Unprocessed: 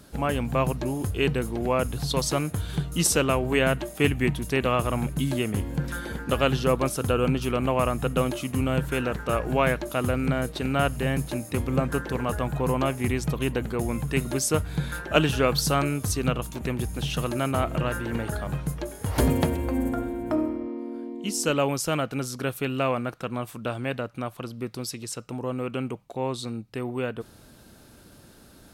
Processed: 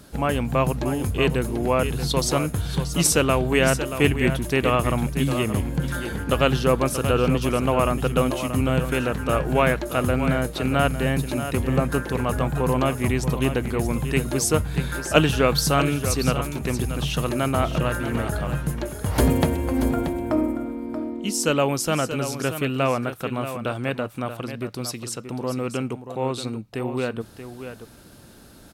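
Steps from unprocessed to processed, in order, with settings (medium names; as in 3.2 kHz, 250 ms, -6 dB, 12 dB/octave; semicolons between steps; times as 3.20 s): delay 631 ms -10 dB; trim +3 dB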